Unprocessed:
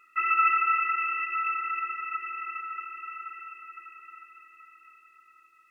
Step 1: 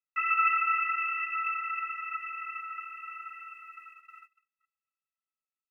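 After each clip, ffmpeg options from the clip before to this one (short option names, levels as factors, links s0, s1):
-af "agate=range=0.00891:threshold=0.00447:ratio=16:detection=peak,highpass=f=1400:p=1"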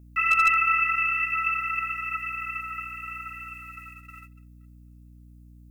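-af "crystalizer=i=6.5:c=0,aeval=exprs='val(0)+0.00447*(sin(2*PI*60*n/s)+sin(2*PI*2*60*n/s)/2+sin(2*PI*3*60*n/s)/3+sin(2*PI*4*60*n/s)/4+sin(2*PI*5*60*n/s)/5)':c=same,asoftclip=type=hard:threshold=0.251,volume=0.891"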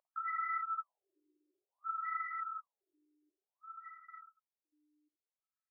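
-filter_complex "[0:a]asplit=2[s0][s1];[s1]aecho=0:1:52|65:0.473|0.237[s2];[s0][s2]amix=inputs=2:normalize=0,alimiter=limit=0.0794:level=0:latency=1:release=16,afftfilt=real='re*between(b*sr/1024,370*pow(1600/370,0.5+0.5*sin(2*PI*0.56*pts/sr))/1.41,370*pow(1600/370,0.5+0.5*sin(2*PI*0.56*pts/sr))*1.41)':imag='im*between(b*sr/1024,370*pow(1600/370,0.5+0.5*sin(2*PI*0.56*pts/sr))/1.41,370*pow(1600/370,0.5+0.5*sin(2*PI*0.56*pts/sr))*1.41)':win_size=1024:overlap=0.75,volume=0.562"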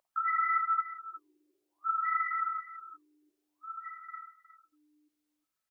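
-af "aecho=1:1:361:0.2,volume=2.51"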